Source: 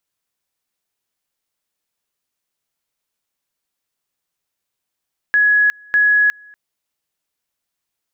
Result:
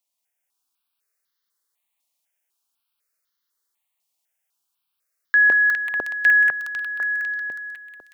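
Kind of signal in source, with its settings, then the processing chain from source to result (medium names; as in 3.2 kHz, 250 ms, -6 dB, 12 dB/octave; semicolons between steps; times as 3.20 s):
two-level tone 1.68 kHz -10 dBFS, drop 29.5 dB, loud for 0.36 s, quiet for 0.24 s, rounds 2
bass shelf 270 Hz -12 dB; thinning echo 182 ms, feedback 81%, high-pass 550 Hz, level -3 dB; stepped phaser 4 Hz 410–2500 Hz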